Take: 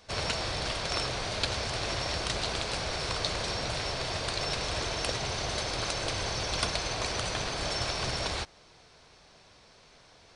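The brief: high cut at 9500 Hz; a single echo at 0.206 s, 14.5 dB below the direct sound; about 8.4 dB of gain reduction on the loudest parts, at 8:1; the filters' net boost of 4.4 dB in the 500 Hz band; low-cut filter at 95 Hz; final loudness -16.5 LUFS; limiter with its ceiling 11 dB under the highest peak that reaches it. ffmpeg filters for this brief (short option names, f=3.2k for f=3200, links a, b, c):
-af "highpass=95,lowpass=9.5k,equalizer=f=500:t=o:g=5.5,acompressor=threshold=-33dB:ratio=8,alimiter=level_in=5.5dB:limit=-24dB:level=0:latency=1,volume=-5.5dB,aecho=1:1:206:0.188,volume=22dB"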